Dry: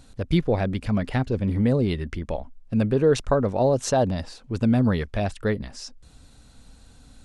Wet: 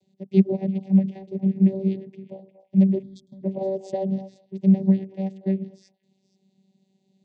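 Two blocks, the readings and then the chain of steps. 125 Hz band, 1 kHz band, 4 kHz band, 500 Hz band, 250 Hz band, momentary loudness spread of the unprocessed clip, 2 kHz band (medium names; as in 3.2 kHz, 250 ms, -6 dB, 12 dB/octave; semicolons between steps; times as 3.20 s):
-1.0 dB, -12.5 dB, under -15 dB, -6.0 dB, +3.5 dB, 12 LU, under -15 dB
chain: Chebyshev shaper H 7 -33 dB, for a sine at -7.5 dBFS; repeats whose band climbs or falls 118 ms, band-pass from 310 Hz, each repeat 1.4 oct, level -7 dB; vocoder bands 16, saw 192 Hz; time-frequency box 3.03–3.43 s, 300–3200 Hz -27 dB; Butterworth band-stop 1.3 kHz, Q 0.9; upward expansion 1.5:1, over -32 dBFS; trim +4 dB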